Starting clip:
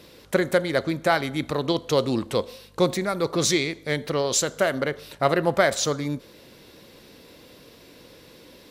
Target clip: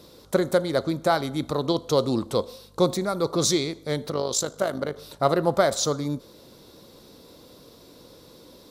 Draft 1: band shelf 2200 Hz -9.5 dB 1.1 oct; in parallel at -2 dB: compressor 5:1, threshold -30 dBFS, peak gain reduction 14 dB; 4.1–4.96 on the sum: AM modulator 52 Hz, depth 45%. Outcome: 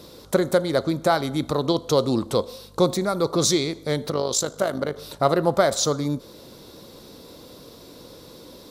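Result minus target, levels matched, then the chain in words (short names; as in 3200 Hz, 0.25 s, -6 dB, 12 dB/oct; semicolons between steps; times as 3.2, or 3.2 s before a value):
compressor: peak gain reduction +14 dB
band shelf 2200 Hz -9.5 dB 1.1 oct; 4.1–4.96 AM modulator 52 Hz, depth 45%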